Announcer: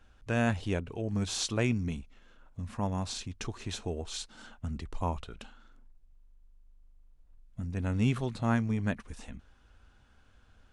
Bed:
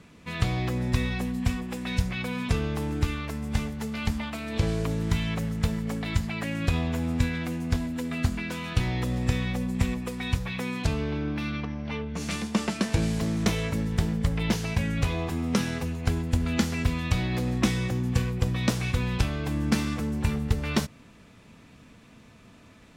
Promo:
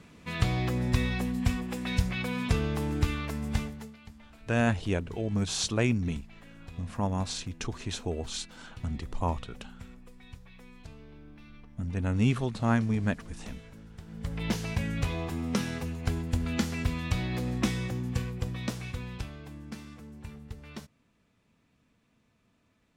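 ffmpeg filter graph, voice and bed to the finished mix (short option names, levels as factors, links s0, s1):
-filter_complex "[0:a]adelay=4200,volume=1.33[s0];[1:a]volume=6.68,afade=t=out:st=3.48:d=0.49:silence=0.0944061,afade=t=in:st=14.06:d=0.46:silence=0.133352,afade=t=out:st=17.63:d=2.02:silence=0.211349[s1];[s0][s1]amix=inputs=2:normalize=0"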